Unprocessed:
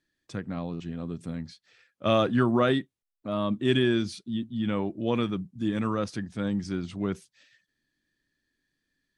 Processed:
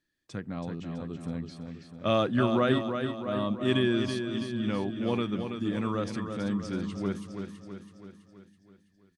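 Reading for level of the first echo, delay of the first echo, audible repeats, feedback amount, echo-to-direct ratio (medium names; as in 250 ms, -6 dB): -7.0 dB, 328 ms, 6, 56%, -5.5 dB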